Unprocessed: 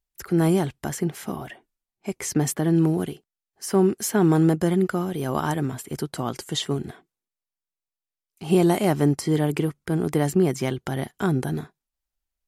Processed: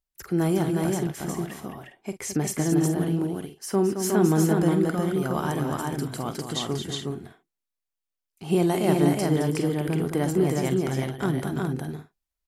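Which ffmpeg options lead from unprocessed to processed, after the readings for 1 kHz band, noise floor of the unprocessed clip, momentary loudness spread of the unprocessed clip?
-1.0 dB, under -85 dBFS, 13 LU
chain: -af "aecho=1:1:45|218|333|362|415:0.224|0.398|0.133|0.708|0.251,volume=-3.5dB"

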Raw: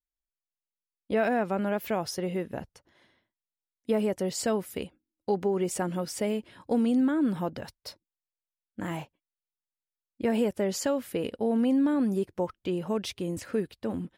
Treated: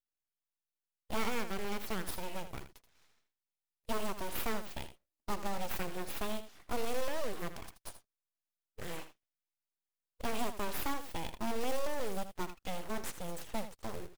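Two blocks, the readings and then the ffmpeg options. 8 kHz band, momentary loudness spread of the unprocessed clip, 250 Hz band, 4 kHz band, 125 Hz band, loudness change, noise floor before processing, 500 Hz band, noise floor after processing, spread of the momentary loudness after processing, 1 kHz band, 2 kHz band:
-6.5 dB, 14 LU, -16.0 dB, -3.5 dB, -10.5 dB, -10.5 dB, under -85 dBFS, -11.5 dB, under -85 dBFS, 12 LU, -4.0 dB, -4.0 dB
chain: -af "highshelf=f=2.8k:g=7,aeval=exprs='abs(val(0))':c=same,acrusher=bits=3:mode=log:mix=0:aa=0.000001,aecho=1:1:80:0.266,volume=-7dB"

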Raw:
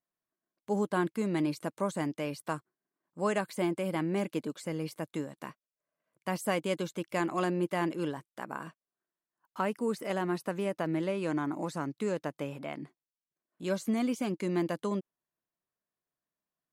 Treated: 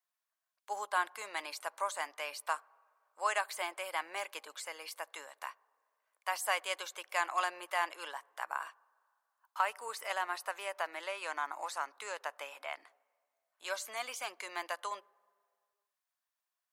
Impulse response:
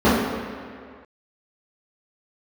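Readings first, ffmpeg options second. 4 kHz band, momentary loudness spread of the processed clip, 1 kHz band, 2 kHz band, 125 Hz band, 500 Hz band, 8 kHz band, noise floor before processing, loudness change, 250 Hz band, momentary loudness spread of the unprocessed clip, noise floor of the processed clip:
+3.0 dB, 11 LU, +1.5 dB, +3.0 dB, under -40 dB, -10.0 dB, +3.0 dB, under -85 dBFS, -4.5 dB, -29.5 dB, 11 LU, under -85 dBFS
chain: -filter_complex "[0:a]highpass=f=780:w=0.5412,highpass=f=780:w=1.3066,asplit=2[a][b];[1:a]atrim=start_sample=2205,lowshelf=f=370:g=-10[c];[b][c]afir=irnorm=-1:irlink=0,volume=-48dB[d];[a][d]amix=inputs=2:normalize=0,volume=3dB"

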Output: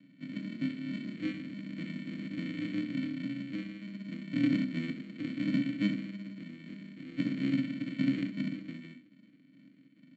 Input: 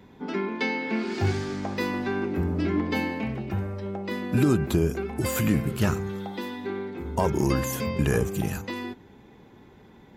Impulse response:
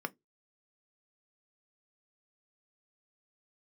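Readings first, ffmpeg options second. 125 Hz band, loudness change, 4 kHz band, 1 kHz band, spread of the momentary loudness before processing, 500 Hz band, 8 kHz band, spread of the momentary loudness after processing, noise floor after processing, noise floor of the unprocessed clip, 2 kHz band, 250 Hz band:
-13.0 dB, -8.0 dB, -8.0 dB, under -25 dB, 9 LU, -22.0 dB, under -25 dB, 13 LU, -60 dBFS, -52 dBFS, -11.0 dB, -4.5 dB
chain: -filter_complex "[0:a]aresample=16000,acrusher=samples=39:mix=1:aa=0.000001,aresample=44100,asplit=3[a][b][c];[a]bandpass=f=270:t=q:w=8,volume=0dB[d];[b]bandpass=f=2.29k:t=q:w=8,volume=-6dB[e];[c]bandpass=f=3.01k:t=q:w=8,volume=-9dB[f];[d][e][f]amix=inputs=3:normalize=0,highshelf=f=2.2k:g=8.5,aecho=1:1:39|66:0.355|0.299[g];[1:a]atrim=start_sample=2205,asetrate=35721,aresample=44100[h];[g][h]afir=irnorm=-1:irlink=0"

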